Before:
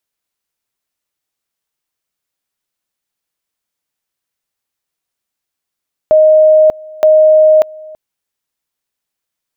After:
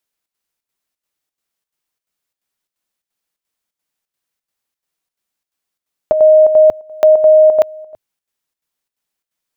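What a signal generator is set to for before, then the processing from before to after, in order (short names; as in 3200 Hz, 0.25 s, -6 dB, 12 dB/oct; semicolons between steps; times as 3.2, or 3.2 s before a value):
two-level tone 622 Hz -3.5 dBFS, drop 24.5 dB, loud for 0.59 s, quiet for 0.33 s, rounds 2
bell 100 Hz -6 dB 0.4 oct; chopper 2.9 Hz, depth 60%, duty 75%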